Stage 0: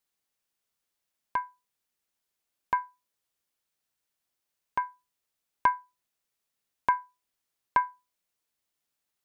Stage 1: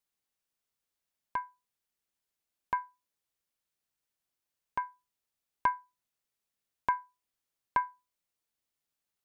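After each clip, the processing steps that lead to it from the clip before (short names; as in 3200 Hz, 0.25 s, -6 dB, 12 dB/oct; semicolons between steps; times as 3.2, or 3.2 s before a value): low shelf 200 Hz +3.5 dB; gain -4.5 dB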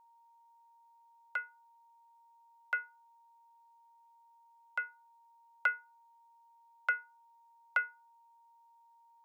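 frequency shift +460 Hz; whine 930 Hz -59 dBFS; gain -2.5 dB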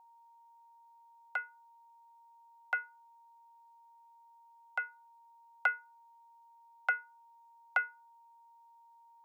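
bell 760 Hz +15 dB 0.26 oct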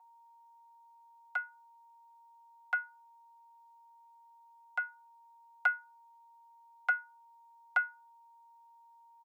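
HPF 620 Hz 24 dB/oct; comb 5.6 ms; gain -2 dB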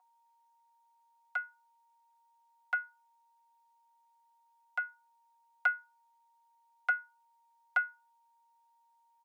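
notch 900 Hz, Q 5.3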